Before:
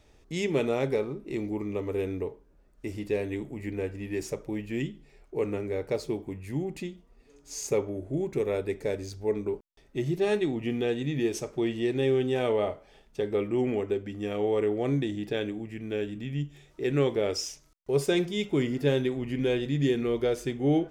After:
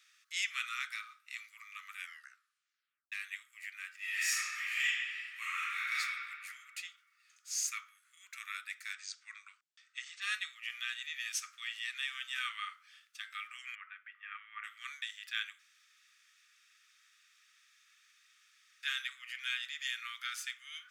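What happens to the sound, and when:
0:01.96: tape stop 1.16 s
0:03.97–0:05.98: thrown reverb, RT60 2 s, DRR −10.5 dB
0:08.93–0:10.22: Butterworth low-pass 8,600 Hz 72 dB per octave
0:13.75–0:14.64: low-pass filter 2,200 Hz 24 dB per octave
0:15.59–0:18.83: fill with room tone
whole clip: Butterworth high-pass 1,200 Hz 96 dB per octave; level +2 dB

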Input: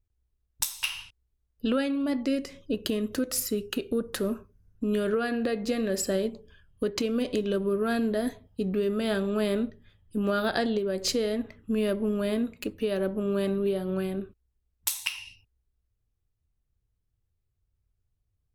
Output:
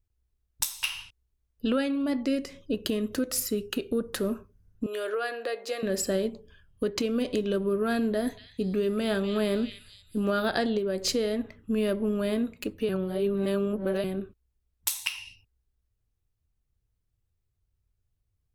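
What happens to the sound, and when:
0:04.86–0:05.83: high-pass filter 450 Hz 24 dB per octave
0:08.08–0:10.41: echo through a band-pass that steps 238 ms, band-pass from 3,200 Hz, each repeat 0.7 octaves, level −4 dB
0:12.89–0:14.04: reverse

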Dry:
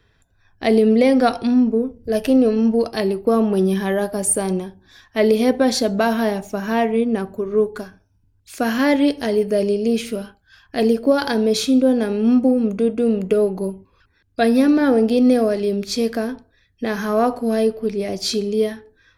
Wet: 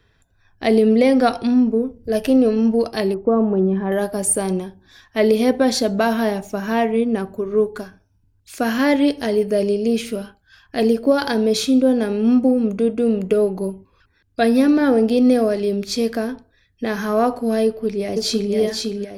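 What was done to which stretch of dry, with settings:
0:03.14–0:03.92: low-pass filter 1,200 Hz
0:17.65–0:18.53: delay throw 510 ms, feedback 45%, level −3.5 dB

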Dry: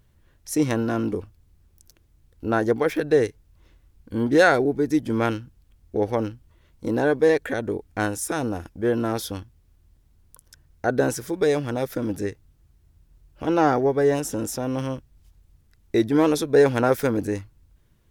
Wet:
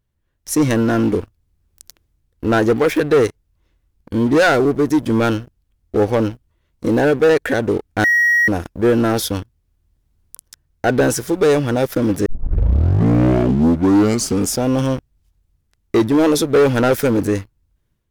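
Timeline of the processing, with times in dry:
0:08.04–0:08.48: beep over 1,900 Hz −20.5 dBFS
0:12.26: tape start 2.39 s
whole clip: leveller curve on the samples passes 3; automatic gain control; level −6.5 dB

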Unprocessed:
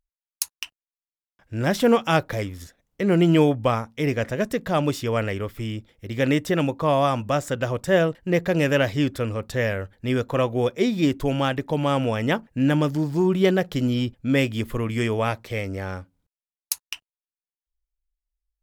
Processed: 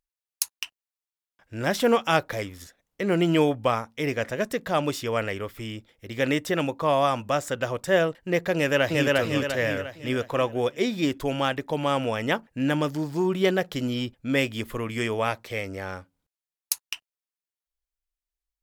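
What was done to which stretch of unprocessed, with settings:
0:08.55–0:09.10: delay throw 350 ms, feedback 45%, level −0.5 dB
whole clip: low-shelf EQ 280 Hz −9 dB

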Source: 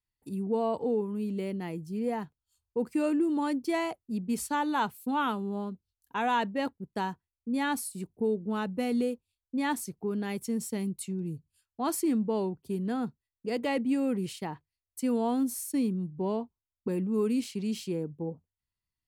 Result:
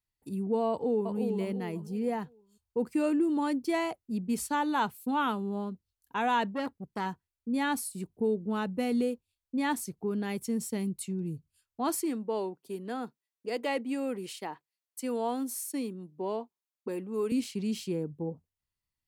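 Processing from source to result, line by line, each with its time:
0:00.70–0:01.17: delay throw 350 ms, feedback 35%, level −5.5 dB
0:06.54–0:07.06: saturating transformer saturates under 890 Hz
0:12.02–0:17.32: high-pass filter 350 Hz

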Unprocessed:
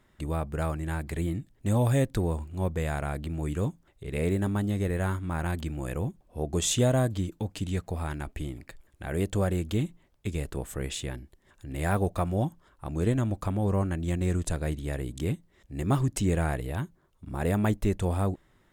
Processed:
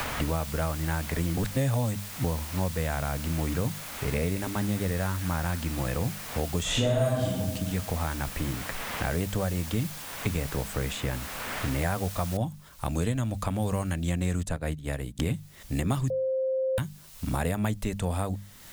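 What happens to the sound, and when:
0:01.37–0:02.24: reverse
0:03.25–0:05.59: delay with a high-pass on its return 202 ms, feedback 45%, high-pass 1,900 Hz, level −7 dB
0:06.61–0:07.28: thrown reverb, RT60 1.1 s, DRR −11.5 dB
0:12.37: noise floor change −42 dB −68 dB
0:14.43–0:15.19: expander for the loud parts 2.5 to 1, over −45 dBFS
0:16.10–0:16.78: beep over 525 Hz −23.5 dBFS
whole clip: parametric band 360 Hz −9.5 dB 0.37 octaves; mains-hum notches 50/100/150/200 Hz; multiband upward and downward compressor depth 100%

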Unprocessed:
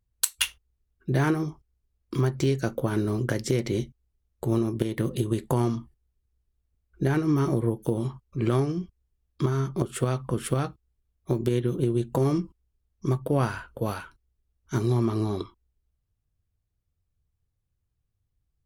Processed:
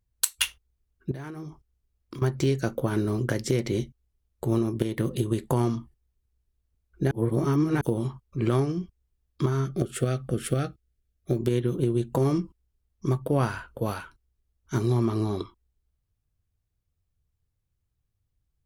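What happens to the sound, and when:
0:01.11–0:02.22: downward compressor 16 to 1, threshold −34 dBFS
0:07.11–0:07.81: reverse
0:09.65–0:11.37: Butterworth band-reject 970 Hz, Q 2

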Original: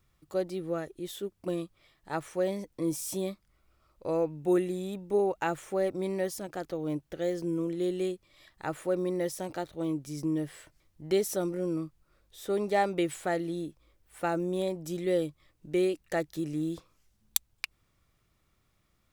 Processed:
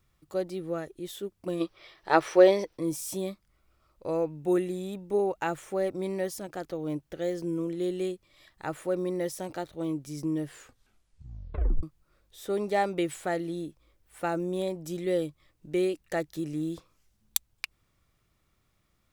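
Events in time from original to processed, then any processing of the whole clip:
0:01.61–0:02.77: gain on a spectral selection 310–6,100 Hz +12 dB
0:10.45: tape stop 1.38 s

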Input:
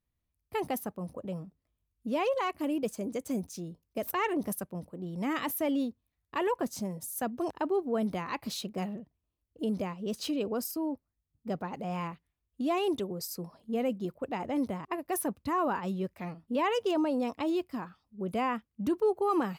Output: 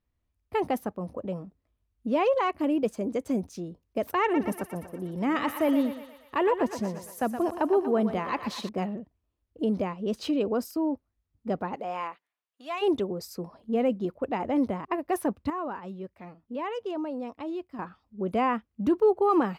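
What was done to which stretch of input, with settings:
0:04.22–0:08.69: feedback echo with a high-pass in the loop 119 ms, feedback 64%, high-pass 510 Hz, level −8 dB
0:11.75–0:12.81: high-pass filter 360 Hz → 1,300 Hz
0:15.50–0:17.79: clip gain −9.5 dB
whole clip: low-pass filter 2,100 Hz 6 dB per octave; parametric band 150 Hz −6.5 dB 0.57 octaves; level +6 dB

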